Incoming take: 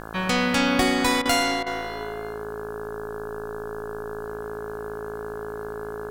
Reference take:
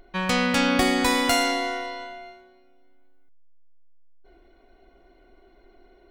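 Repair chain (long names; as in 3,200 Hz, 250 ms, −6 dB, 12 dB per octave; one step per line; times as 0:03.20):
hum removal 54.7 Hz, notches 31
notch filter 420 Hz, Q 30
repair the gap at 0:01.22/0:01.63, 33 ms
downward expander −26 dBFS, range −21 dB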